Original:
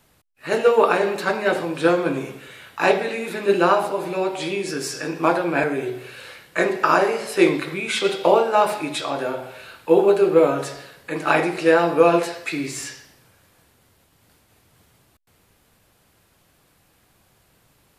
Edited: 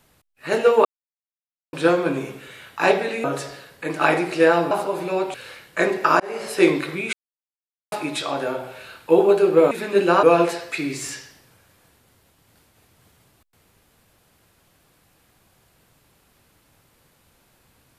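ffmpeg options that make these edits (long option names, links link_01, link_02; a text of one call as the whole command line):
ffmpeg -i in.wav -filter_complex "[0:a]asplit=11[link_01][link_02][link_03][link_04][link_05][link_06][link_07][link_08][link_09][link_10][link_11];[link_01]atrim=end=0.85,asetpts=PTS-STARTPTS,afade=type=out:start_time=0.846:duration=0.004:curve=hsin[link_12];[link_02]atrim=start=0.85:end=1.73,asetpts=PTS-STARTPTS,volume=0[link_13];[link_03]atrim=start=1.73:end=3.242,asetpts=PTS-STARTPTS,afade=type=in:duration=0.004:curve=hsin[link_14];[link_04]atrim=start=10.498:end=11.972[link_15];[link_05]atrim=start=3.758:end=4.392[link_16];[link_06]atrim=start=6.128:end=6.99,asetpts=PTS-STARTPTS,afade=type=out:start_time=0.858:duration=0.004:curve=hsin[link_17];[link_07]atrim=start=6.99:end=7.92,asetpts=PTS-STARTPTS,afade=type=in:duration=0.28,afade=type=out:start_time=0.926:duration=0.004:curve=hsin[link_18];[link_08]atrim=start=7.92:end=8.71,asetpts=PTS-STARTPTS,volume=0[link_19];[link_09]atrim=start=8.71:end=10.502,asetpts=PTS-STARTPTS,afade=type=in:duration=0.004:curve=hsin[link_20];[link_10]atrim=start=3.238:end=3.762[link_21];[link_11]atrim=start=11.968[link_22];[link_12][link_13][link_14]concat=n=3:v=0:a=1[link_23];[link_23][link_15]acrossfade=duration=0.004:curve1=hsin:curve2=hsin[link_24];[link_24][link_16]acrossfade=duration=0.004:curve1=hsin:curve2=hsin[link_25];[link_17][link_18][link_19][link_20]concat=n=4:v=0:a=1[link_26];[link_25][link_26]acrossfade=duration=0.004:curve1=hsin:curve2=hsin[link_27];[link_27][link_21]acrossfade=duration=0.004:curve1=hsin:curve2=hsin[link_28];[link_28][link_22]acrossfade=duration=0.004:curve1=hsin:curve2=hsin" out.wav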